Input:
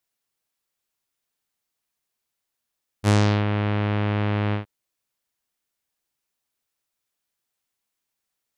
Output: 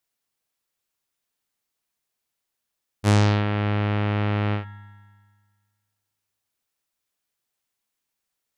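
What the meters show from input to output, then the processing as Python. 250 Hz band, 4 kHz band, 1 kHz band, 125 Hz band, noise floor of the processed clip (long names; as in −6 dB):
−0.5 dB, 0.0 dB, +0.5 dB, +0.5 dB, −82 dBFS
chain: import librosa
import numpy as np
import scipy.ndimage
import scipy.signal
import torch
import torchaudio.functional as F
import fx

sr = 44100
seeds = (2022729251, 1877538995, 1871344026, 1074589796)

y = fx.rev_spring(x, sr, rt60_s=1.7, pass_ms=(49,), chirp_ms=50, drr_db=12.5)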